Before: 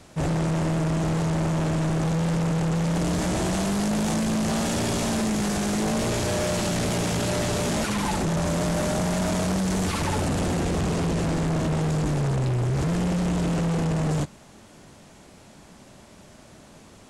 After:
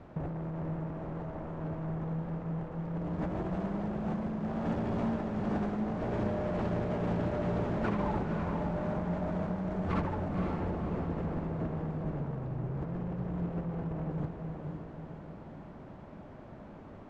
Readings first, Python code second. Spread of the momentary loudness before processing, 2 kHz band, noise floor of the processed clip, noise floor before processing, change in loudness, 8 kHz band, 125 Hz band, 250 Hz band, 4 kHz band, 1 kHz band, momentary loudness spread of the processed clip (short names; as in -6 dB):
1 LU, -13.5 dB, -49 dBFS, -50 dBFS, -10.0 dB, under -35 dB, -10.0 dB, -9.0 dB, -24.5 dB, -8.5 dB, 13 LU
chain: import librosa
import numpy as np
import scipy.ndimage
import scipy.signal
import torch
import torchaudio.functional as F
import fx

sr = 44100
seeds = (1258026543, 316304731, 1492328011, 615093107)

p1 = scipy.signal.sosfilt(scipy.signal.butter(2, 1300.0, 'lowpass', fs=sr, output='sos'), x)
p2 = fx.over_compress(p1, sr, threshold_db=-28.0, ratio=-0.5)
p3 = p2 + fx.echo_diffused(p2, sr, ms=520, feedback_pct=48, wet_db=-4.5, dry=0)
y = p3 * librosa.db_to_amplitude(-5.5)